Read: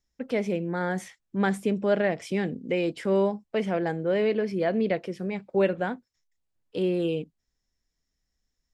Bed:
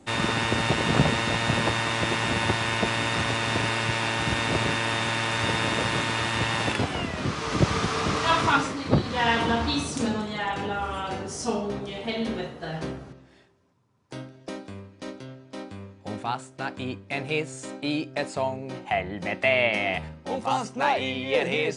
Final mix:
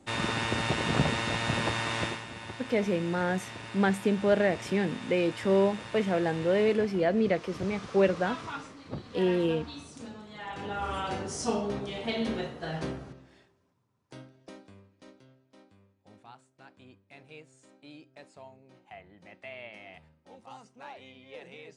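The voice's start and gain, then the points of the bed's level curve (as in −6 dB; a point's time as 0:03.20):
2.40 s, −0.5 dB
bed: 0:02.04 −5 dB
0:02.26 −17 dB
0:10.20 −17 dB
0:10.90 −2 dB
0:13.21 −2 dB
0:15.86 −22 dB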